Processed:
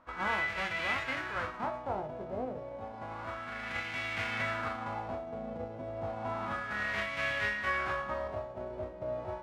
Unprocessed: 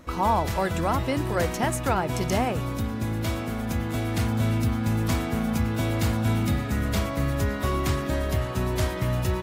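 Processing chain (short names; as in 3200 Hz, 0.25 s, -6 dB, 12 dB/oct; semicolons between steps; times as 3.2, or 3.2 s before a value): spectral whitening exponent 0.1; notch 1800 Hz, Q 26; resonator 51 Hz, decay 0.23 s, harmonics all, mix 90%; LFO low-pass sine 0.31 Hz 550–2200 Hz; 7.65–8.28 doubler 16 ms -4 dB; gain -3 dB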